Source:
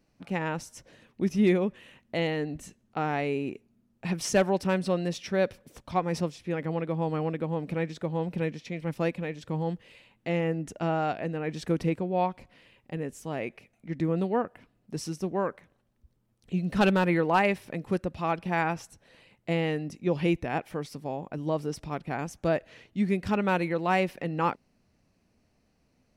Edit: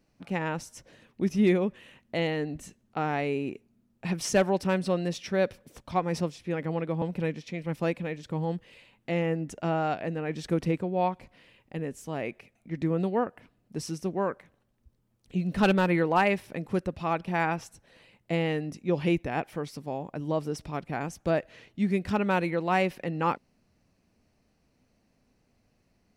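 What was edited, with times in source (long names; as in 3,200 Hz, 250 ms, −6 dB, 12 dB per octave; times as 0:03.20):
0:07.02–0:08.20: remove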